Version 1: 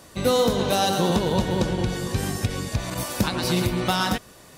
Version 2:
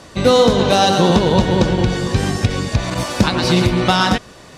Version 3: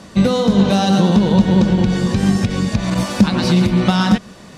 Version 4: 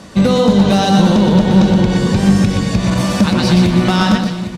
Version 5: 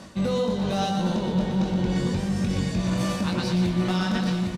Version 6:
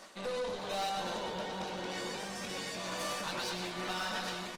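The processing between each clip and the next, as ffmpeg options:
-af "lowpass=6200,volume=2.66"
-af "acompressor=threshold=0.2:ratio=6,equalizer=f=200:t=o:w=0.38:g=14.5,volume=0.891"
-filter_complex "[0:a]volume=2.66,asoftclip=hard,volume=0.376,asplit=2[s0][s1];[s1]aecho=0:1:122|321|808:0.501|0.141|0.251[s2];[s0][s2]amix=inputs=2:normalize=0,volume=1.33"
-filter_complex "[0:a]areverse,acompressor=threshold=0.126:ratio=6,areverse,asplit=2[s0][s1];[s1]adelay=22,volume=0.562[s2];[s0][s2]amix=inputs=2:normalize=0,volume=0.531"
-af "highpass=590,aeval=exprs='(tanh(35.5*val(0)+0.5)-tanh(0.5))/35.5':c=same" -ar 48000 -c:a libopus -b:a 20k

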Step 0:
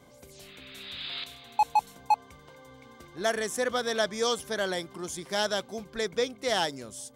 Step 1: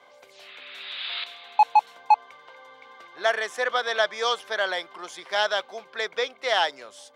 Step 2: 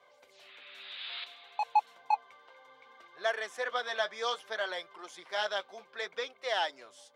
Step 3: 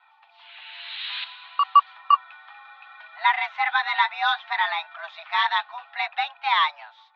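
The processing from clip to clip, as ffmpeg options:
-filter_complex "[0:a]highpass=f=230:p=1,acrossover=split=530 4200:gain=0.0708 1 0.1[s0][s1][s2];[s0][s1][s2]amix=inputs=3:normalize=0,volume=2.37"
-af "flanger=delay=1.7:depth=8.6:regen=-38:speed=0.62:shape=sinusoidal,volume=0.562"
-af "highpass=f=350:t=q:w=0.5412,highpass=f=350:t=q:w=1.307,lowpass=f=3500:t=q:w=0.5176,lowpass=f=3500:t=q:w=0.7071,lowpass=f=3500:t=q:w=1.932,afreqshift=300,aeval=exprs='0.158*(cos(1*acos(clip(val(0)/0.158,-1,1)))-cos(1*PI/2))+0.000891*(cos(2*acos(clip(val(0)/0.158,-1,1)))-cos(2*PI/2))':c=same,dynaudnorm=f=190:g=5:m=2.24,volume=1.58"

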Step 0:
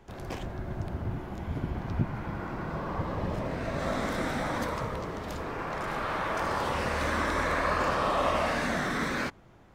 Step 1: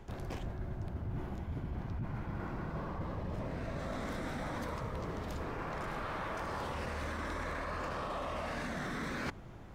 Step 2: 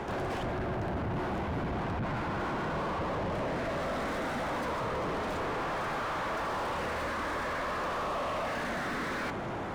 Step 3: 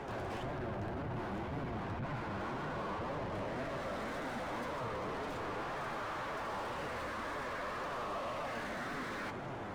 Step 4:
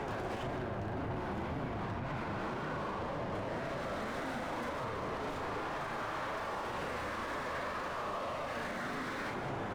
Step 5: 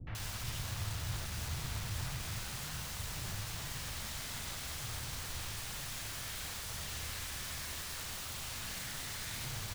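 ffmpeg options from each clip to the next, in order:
-af "lowshelf=f=180:g=6.5,alimiter=limit=0.0944:level=0:latency=1:release=14,areverse,acompressor=threshold=0.0112:ratio=6,areverse,volume=1.33"
-filter_complex "[0:a]equalizer=f=9200:t=o:w=0.72:g=5.5,asplit=2[s0][s1];[s1]highpass=f=720:p=1,volume=56.2,asoftclip=type=tanh:threshold=0.0562[s2];[s0][s2]amix=inputs=2:normalize=0,lowpass=f=1200:p=1,volume=0.501"
-af "flanger=delay=6.6:depth=3.8:regen=52:speed=1.9:shape=triangular,volume=0.75"
-af "aecho=1:1:37.9|189.5:0.562|0.316,alimiter=level_in=3.98:limit=0.0631:level=0:latency=1:release=162,volume=0.251,volume=1.88"
-filter_complex "[0:a]acrossover=split=130|2300[s0][s1][s2];[s1]aeval=exprs='(mod(178*val(0)+1,2)-1)/178':c=same[s3];[s0][s3][s2]amix=inputs=3:normalize=0,acrossover=split=390|2400[s4][s5][s6];[s5]adelay=70[s7];[s6]adelay=150[s8];[s4][s7][s8]amix=inputs=3:normalize=0,volume=2"

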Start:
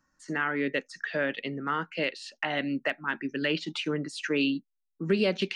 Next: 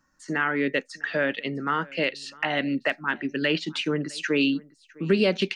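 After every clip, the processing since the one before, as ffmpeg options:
-af "aecho=1:1:656:0.0631,volume=1.58"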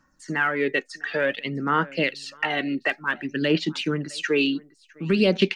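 -af "aphaser=in_gain=1:out_gain=1:delay=2.8:decay=0.49:speed=0.55:type=sinusoidal"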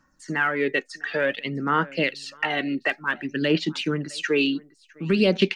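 -af anull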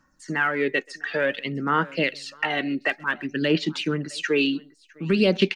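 -filter_complex "[0:a]asplit=2[s0][s1];[s1]adelay=130,highpass=300,lowpass=3400,asoftclip=type=hard:threshold=0.141,volume=0.0501[s2];[s0][s2]amix=inputs=2:normalize=0"

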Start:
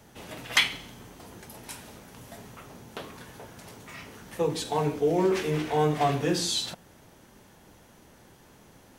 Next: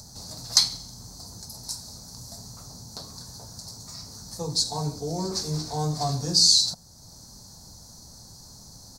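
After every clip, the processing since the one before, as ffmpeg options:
-filter_complex "[0:a]firequalizer=gain_entry='entry(100,0);entry(360,-16);entry(720,-9);entry(1000,-10);entry(2000,-24);entry(3000,-27);entry(4300,11);entry(11000,-3)':delay=0.05:min_phase=1,asplit=2[s0][s1];[s1]acompressor=mode=upward:threshold=0.0112:ratio=2.5,volume=1[s2];[s0][s2]amix=inputs=2:normalize=0,volume=0.891"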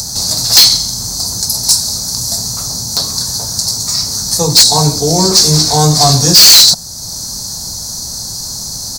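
-af "highshelf=f=2100:g=10.5,acontrast=52,apsyclip=4.22,volume=0.841"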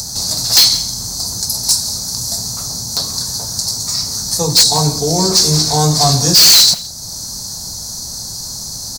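-filter_complex "[0:a]asplit=2[s0][s1];[s1]adelay=169.1,volume=0.141,highshelf=f=4000:g=-3.8[s2];[s0][s2]amix=inputs=2:normalize=0,volume=0.668"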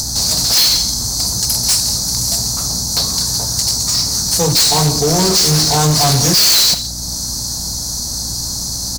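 -af "aeval=exprs='val(0)+0.02*(sin(2*PI*60*n/s)+sin(2*PI*2*60*n/s)/2+sin(2*PI*3*60*n/s)/3+sin(2*PI*4*60*n/s)/4+sin(2*PI*5*60*n/s)/5)':c=same,asoftclip=type=hard:threshold=0.2,volume=1.58"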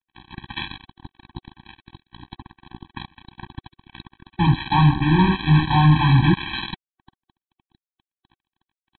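-af "aresample=8000,acrusher=bits=2:mix=0:aa=0.5,aresample=44100,afftfilt=real='re*eq(mod(floor(b*sr/1024/380),2),0)':imag='im*eq(mod(floor(b*sr/1024/380),2),0)':win_size=1024:overlap=0.75"

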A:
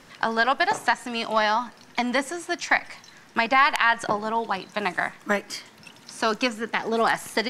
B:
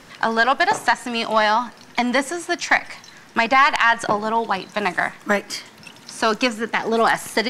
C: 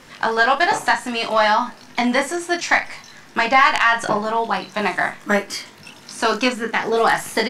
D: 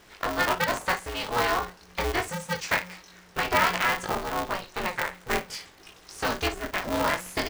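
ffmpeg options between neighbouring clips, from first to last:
-af "acontrast=72,volume=0.841"
-af "aecho=1:1:20|58:0.708|0.266,volume=0.891"
-af "aeval=exprs='val(0)*sgn(sin(2*PI*180*n/s))':c=same,volume=0.355"

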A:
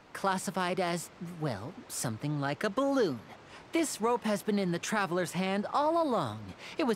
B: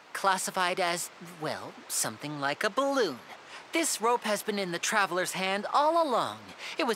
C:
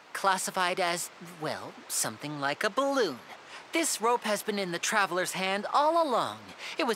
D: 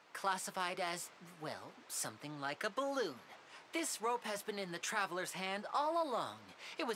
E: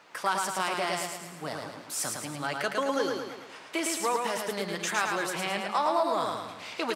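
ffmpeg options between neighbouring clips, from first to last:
-af "highpass=f=850:p=1,volume=2.24"
-af anull
-af "areverse,acompressor=mode=upward:threshold=0.00891:ratio=2.5,areverse,flanger=delay=5.8:depth=1.5:regen=-70:speed=0.34:shape=triangular,volume=0.473"
-af "aecho=1:1:109|218|327|436|545|654:0.631|0.309|0.151|0.0742|0.0364|0.0178,volume=2.51"

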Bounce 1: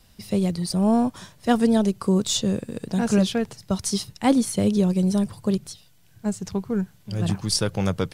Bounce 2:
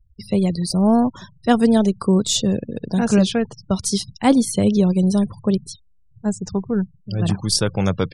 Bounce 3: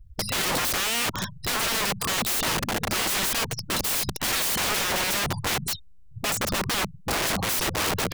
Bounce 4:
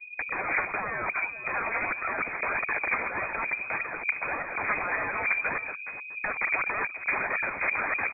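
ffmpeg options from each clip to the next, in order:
-af "afftfilt=real='re*gte(hypot(re,im),0.0112)':imag='im*gte(hypot(re,im),0.0112)':win_size=1024:overlap=0.75,volume=1.58"
-af "alimiter=limit=0.211:level=0:latency=1:release=97,aeval=exprs='(mod(29.9*val(0)+1,2)-1)/29.9':c=same,volume=2.82"
-af "aecho=1:1:421:0.211,aphaser=in_gain=1:out_gain=1:delay=1.7:decay=0.46:speed=1.7:type=triangular,lowpass=f=2100:t=q:w=0.5098,lowpass=f=2100:t=q:w=0.6013,lowpass=f=2100:t=q:w=0.9,lowpass=f=2100:t=q:w=2.563,afreqshift=-2500,volume=0.794"

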